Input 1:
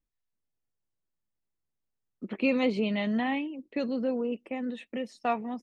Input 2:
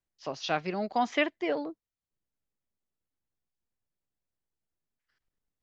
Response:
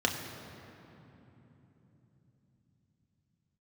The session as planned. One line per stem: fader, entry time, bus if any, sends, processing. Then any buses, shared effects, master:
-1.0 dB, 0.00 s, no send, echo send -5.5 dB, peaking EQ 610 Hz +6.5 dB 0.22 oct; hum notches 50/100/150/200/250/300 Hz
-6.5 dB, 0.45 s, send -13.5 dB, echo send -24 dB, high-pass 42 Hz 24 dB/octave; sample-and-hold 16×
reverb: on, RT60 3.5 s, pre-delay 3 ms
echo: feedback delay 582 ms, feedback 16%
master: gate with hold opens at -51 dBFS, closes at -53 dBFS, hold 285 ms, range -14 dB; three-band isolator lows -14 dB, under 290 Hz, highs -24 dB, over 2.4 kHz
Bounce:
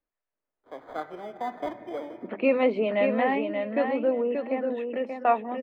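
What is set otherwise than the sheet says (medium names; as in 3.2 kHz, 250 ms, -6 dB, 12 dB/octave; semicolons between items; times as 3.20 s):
stem 1 -1.0 dB -> +6.0 dB; master: missing gate with hold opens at -51 dBFS, closes at -53 dBFS, hold 285 ms, range -14 dB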